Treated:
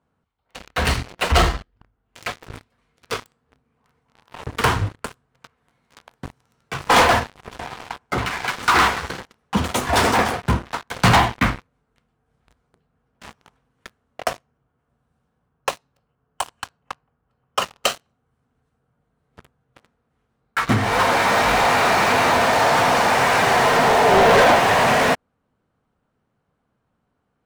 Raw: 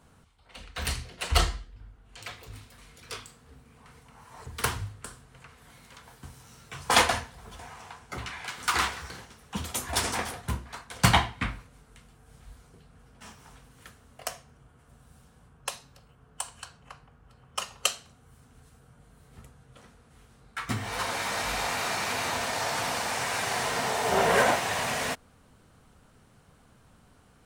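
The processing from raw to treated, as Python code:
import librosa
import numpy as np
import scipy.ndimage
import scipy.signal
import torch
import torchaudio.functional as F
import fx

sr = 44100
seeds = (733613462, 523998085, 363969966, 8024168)

y = fx.lowpass(x, sr, hz=1400.0, slope=6)
y = fx.low_shelf(y, sr, hz=94.0, db=-11.0)
y = fx.leveller(y, sr, passes=5)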